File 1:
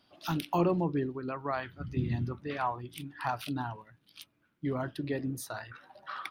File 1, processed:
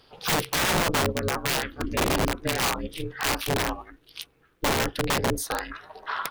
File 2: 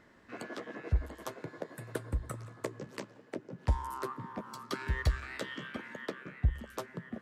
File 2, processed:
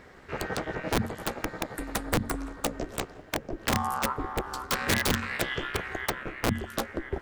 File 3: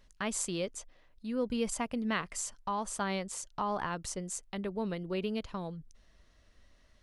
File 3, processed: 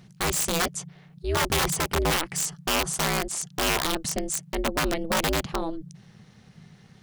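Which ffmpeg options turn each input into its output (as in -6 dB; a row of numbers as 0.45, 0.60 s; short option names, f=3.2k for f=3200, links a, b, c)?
-af "apsyclip=20.5dB,aeval=exprs='(mod(2.51*val(0)+1,2)-1)/2.51':c=same,aeval=exprs='val(0)*sin(2*PI*160*n/s)':c=same,volume=-7.5dB"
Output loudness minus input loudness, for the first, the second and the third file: +8.0, +7.5, +10.0 LU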